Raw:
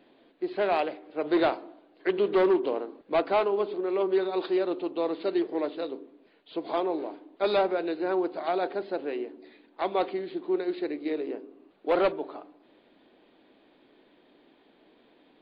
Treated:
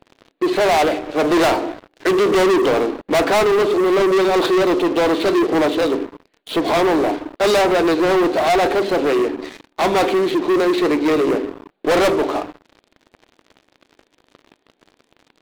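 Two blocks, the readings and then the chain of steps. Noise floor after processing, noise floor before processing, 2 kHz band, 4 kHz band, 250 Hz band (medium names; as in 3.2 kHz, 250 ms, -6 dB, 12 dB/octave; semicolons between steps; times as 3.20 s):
-67 dBFS, -62 dBFS, +15.5 dB, +16.0 dB, +12.5 dB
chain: flange 0.32 Hz, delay 0.4 ms, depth 1.8 ms, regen +90%; waveshaping leveller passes 5; trim +8 dB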